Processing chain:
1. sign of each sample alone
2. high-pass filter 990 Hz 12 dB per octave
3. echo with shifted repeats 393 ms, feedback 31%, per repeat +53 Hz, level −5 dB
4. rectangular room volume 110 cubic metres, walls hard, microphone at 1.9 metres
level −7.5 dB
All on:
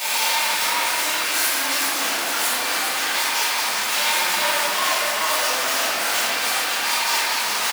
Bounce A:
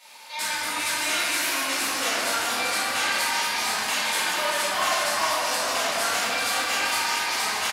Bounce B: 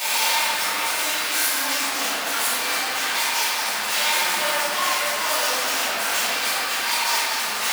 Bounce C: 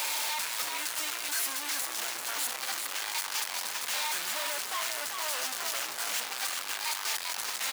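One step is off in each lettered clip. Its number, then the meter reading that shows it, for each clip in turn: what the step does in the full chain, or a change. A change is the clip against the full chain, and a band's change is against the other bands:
1, distortion level −1 dB
3, change in momentary loudness spread +1 LU
4, echo-to-direct ratio 15.0 dB to −4.5 dB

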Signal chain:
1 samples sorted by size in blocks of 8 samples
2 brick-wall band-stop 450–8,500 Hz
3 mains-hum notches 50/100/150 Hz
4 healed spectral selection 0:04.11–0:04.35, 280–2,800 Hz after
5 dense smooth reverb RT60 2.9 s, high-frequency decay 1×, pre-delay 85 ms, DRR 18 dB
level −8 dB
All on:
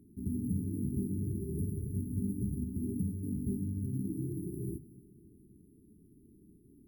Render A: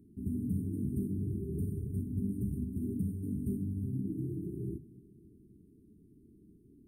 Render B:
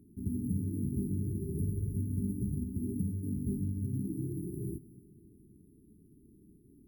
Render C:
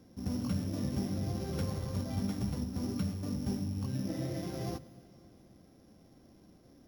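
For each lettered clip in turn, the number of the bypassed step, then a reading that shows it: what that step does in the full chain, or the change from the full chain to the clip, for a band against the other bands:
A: 1, distortion level −18 dB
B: 3, 125 Hz band +1.5 dB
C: 2, 500 Hz band +3.5 dB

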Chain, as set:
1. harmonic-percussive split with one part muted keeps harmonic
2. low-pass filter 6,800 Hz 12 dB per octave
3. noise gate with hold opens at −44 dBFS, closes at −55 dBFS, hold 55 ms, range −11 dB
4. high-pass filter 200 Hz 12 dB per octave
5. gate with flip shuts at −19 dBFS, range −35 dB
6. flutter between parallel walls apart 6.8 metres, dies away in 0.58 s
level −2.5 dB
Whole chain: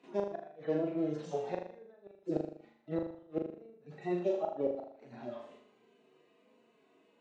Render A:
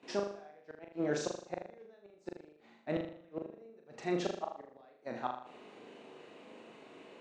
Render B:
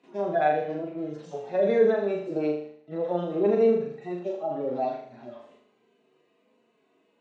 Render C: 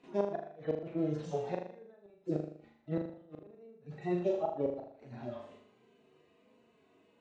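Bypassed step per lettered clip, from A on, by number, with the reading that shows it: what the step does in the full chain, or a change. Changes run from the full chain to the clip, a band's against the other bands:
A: 1, 2 kHz band +9.5 dB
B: 5, change in momentary loudness spread −2 LU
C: 4, 125 Hz band +5.0 dB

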